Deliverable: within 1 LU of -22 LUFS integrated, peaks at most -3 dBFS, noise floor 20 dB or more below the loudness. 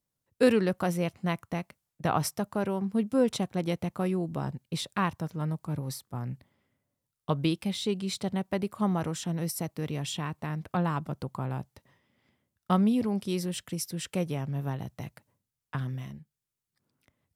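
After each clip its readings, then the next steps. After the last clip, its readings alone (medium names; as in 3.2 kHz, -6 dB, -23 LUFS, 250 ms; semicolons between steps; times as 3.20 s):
loudness -31.0 LUFS; peak level -10.0 dBFS; loudness target -22.0 LUFS
-> trim +9 dB; peak limiter -3 dBFS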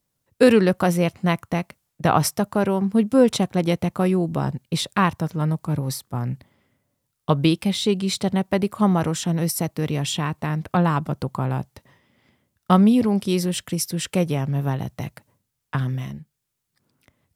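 loudness -22.0 LUFS; peak level -3.0 dBFS; noise floor -78 dBFS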